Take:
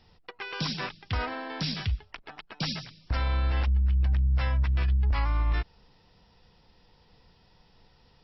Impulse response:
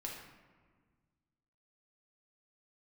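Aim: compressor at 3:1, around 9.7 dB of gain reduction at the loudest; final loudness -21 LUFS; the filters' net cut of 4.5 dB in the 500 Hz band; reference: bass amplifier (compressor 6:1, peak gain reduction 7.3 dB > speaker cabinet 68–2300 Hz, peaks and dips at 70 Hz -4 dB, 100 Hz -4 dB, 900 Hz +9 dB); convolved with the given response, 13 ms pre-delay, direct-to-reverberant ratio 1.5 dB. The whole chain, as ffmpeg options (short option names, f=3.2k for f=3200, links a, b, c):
-filter_complex "[0:a]equalizer=f=500:t=o:g=-6.5,acompressor=threshold=-35dB:ratio=3,asplit=2[a][b];[1:a]atrim=start_sample=2205,adelay=13[c];[b][c]afir=irnorm=-1:irlink=0,volume=-0.5dB[d];[a][d]amix=inputs=2:normalize=0,acompressor=threshold=-31dB:ratio=6,highpass=f=68:w=0.5412,highpass=f=68:w=1.3066,equalizer=f=70:t=q:w=4:g=-4,equalizer=f=100:t=q:w=4:g=-4,equalizer=f=900:t=q:w=4:g=9,lowpass=f=2.3k:w=0.5412,lowpass=f=2.3k:w=1.3066,volume=19.5dB"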